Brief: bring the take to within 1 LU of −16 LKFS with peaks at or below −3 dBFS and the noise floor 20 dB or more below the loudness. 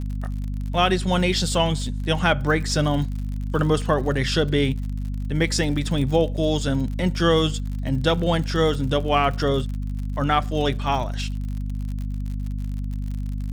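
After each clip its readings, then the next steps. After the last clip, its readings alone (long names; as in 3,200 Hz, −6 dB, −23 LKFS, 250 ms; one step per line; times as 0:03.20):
crackle rate 61 per second; mains hum 50 Hz; hum harmonics up to 250 Hz; level of the hum −25 dBFS; integrated loudness −23.5 LKFS; sample peak −5.5 dBFS; target loudness −16.0 LKFS
→ click removal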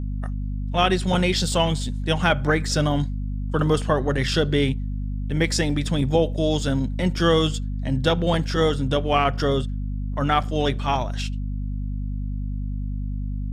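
crackle rate 0.37 per second; mains hum 50 Hz; hum harmonics up to 250 Hz; level of the hum −25 dBFS
→ hum removal 50 Hz, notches 5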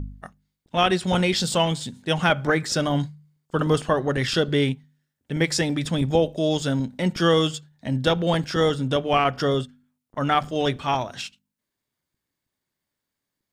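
mains hum none found; integrated loudness −23.0 LKFS; sample peak −6.0 dBFS; target loudness −16.0 LKFS
→ level +7 dB
brickwall limiter −3 dBFS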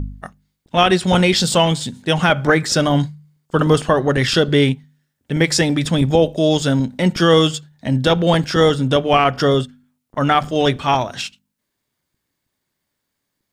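integrated loudness −16.5 LKFS; sample peak −3.0 dBFS; background noise floor −77 dBFS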